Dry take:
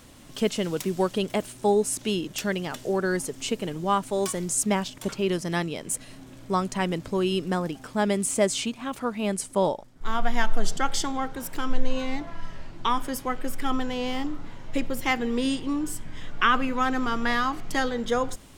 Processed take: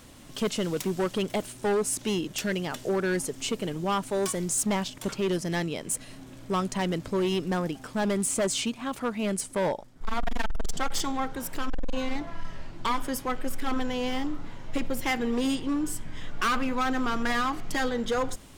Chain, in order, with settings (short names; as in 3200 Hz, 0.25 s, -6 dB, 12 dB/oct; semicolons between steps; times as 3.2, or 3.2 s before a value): hard clip -22 dBFS, distortion -7 dB